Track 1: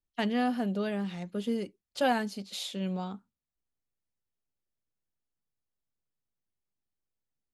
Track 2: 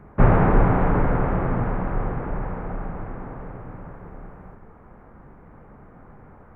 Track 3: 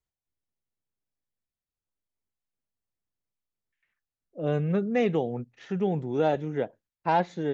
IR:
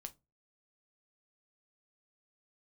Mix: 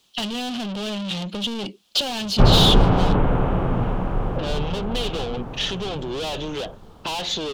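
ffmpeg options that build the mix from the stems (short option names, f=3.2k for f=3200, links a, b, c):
-filter_complex "[0:a]lowpass=f=2.7k:p=1,equalizer=f=200:t=o:w=0.47:g=8.5,volume=1dB[a];[1:a]adelay=2200,volume=1.5dB[b];[2:a]volume=-6dB[c];[a][c]amix=inputs=2:normalize=0,asplit=2[d][e];[e]highpass=f=720:p=1,volume=37dB,asoftclip=type=tanh:threshold=-14.5dB[f];[d][f]amix=inputs=2:normalize=0,lowpass=f=3.9k:p=1,volume=-6dB,acompressor=threshold=-29dB:ratio=4,volume=0dB[g];[b][g]amix=inputs=2:normalize=0,highshelf=f=2.5k:t=q:w=3:g=7.5"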